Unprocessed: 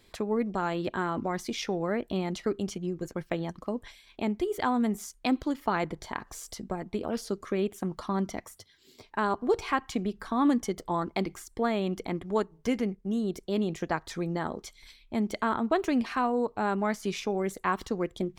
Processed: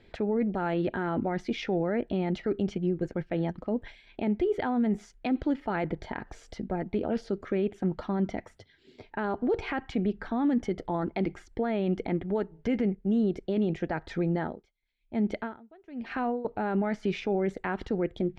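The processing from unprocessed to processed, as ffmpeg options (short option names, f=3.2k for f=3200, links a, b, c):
-filter_complex "[0:a]asettb=1/sr,asplit=3[a][b][c];[a]atrim=end=14.384[d];[b]atrim=start=14.38:end=16.45,asetpts=PTS-STARTPTS,afade=t=in:d=0.004:c=qsin,afade=t=out:st=2.066:d=0.004:c=qsin,aeval=exprs='val(0)*pow(10,-33*(0.5-0.5*cos(2*PI*1.1*n/s))/20)':c=same[e];[c]atrim=start=16.446[f];[d][e]acrossfade=d=0.004:c1=hsin:c2=qsin[g];[g][f]acrossfade=d=0.004:c1=qsin:c2=hsin,lowpass=2.3k,equalizer=f=1.1k:t=o:w=0.28:g=-15,alimiter=level_in=0.5dB:limit=-24dB:level=0:latency=1:release=13,volume=-0.5dB,volume=5dB"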